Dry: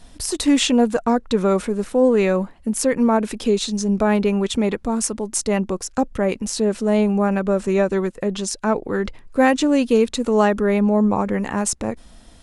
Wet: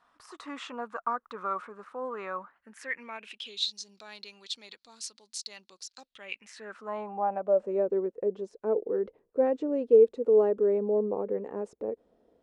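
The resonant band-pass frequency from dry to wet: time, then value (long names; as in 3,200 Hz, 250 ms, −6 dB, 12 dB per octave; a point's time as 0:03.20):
resonant band-pass, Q 5.3
0:02.39 1,200 Hz
0:03.75 4,300 Hz
0:06.03 4,300 Hz
0:06.87 1,100 Hz
0:07.89 450 Hz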